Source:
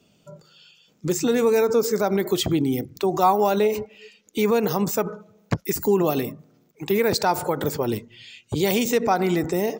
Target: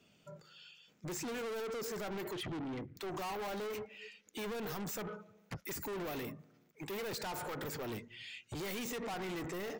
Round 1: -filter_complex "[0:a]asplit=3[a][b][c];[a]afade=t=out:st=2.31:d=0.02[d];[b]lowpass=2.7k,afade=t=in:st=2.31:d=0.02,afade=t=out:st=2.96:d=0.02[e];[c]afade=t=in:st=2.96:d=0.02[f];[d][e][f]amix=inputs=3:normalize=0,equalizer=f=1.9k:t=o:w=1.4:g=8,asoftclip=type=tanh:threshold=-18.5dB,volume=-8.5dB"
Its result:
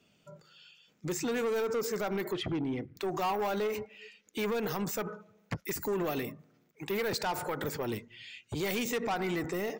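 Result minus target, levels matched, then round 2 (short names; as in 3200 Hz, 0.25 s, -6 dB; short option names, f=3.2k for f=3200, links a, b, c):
soft clip: distortion -6 dB
-filter_complex "[0:a]asplit=3[a][b][c];[a]afade=t=out:st=2.31:d=0.02[d];[b]lowpass=2.7k,afade=t=in:st=2.31:d=0.02,afade=t=out:st=2.96:d=0.02[e];[c]afade=t=in:st=2.96:d=0.02[f];[d][e][f]amix=inputs=3:normalize=0,equalizer=f=1.9k:t=o:w=1.4:g=8,asoftclip=type=tanh:threshold=-30dB,volume=-8.5dB"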